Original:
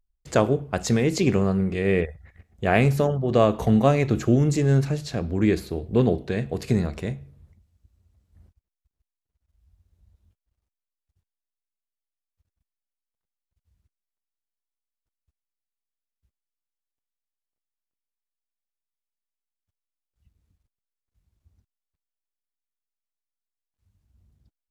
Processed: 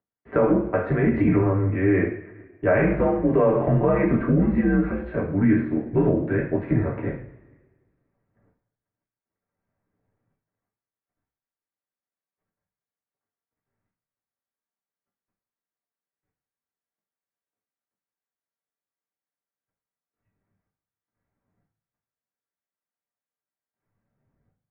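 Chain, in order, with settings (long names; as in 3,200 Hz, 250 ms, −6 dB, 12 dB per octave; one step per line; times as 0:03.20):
single-sideband voice off tune −87 Hz 190–2,100 Hz
coupled-rooms reverb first 0.43 s, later 1.5 s, from −18 dB, DRR −4 dB
brickwall limiter −10.5 dBFS, peak gain reduction 9 dB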